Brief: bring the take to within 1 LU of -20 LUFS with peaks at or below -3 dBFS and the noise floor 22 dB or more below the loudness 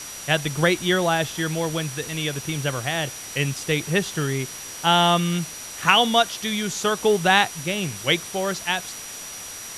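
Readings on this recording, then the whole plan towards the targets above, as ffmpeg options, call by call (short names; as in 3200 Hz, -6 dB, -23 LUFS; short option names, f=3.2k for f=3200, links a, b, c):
steady tone 5800 Hz; tone level -38 dBFS; noise floor -36 dBFS; noise floor target -45 dBFS; loudness -22.5 LUFS; peak -2.0 dBFS; loudness target -20.0 LUFS
-> -af "bandreject=f=5.8k:w=30"
-af "afftdn=nr=9:nf=-36"
-af "volume=2.5dB,alimiter=limit=-3dB:level=0:latency=1"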